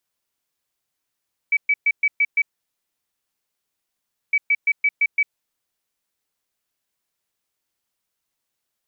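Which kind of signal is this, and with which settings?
beep pattern sine 2290 Hz, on 0.05 s, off 0.12 s, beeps 6, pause 1.91 s, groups 2, -14 dBFS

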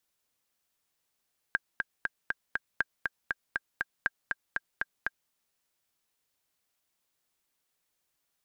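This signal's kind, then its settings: metronome 239 bpm, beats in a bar 5, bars 3, 1600 Hz, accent 3.5 dB -12.5 dBFS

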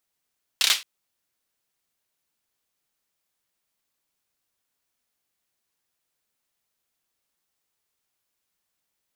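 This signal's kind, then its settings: hand clap length 0.22 s, apart 30 ms, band 3300 Hz, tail 0.25 s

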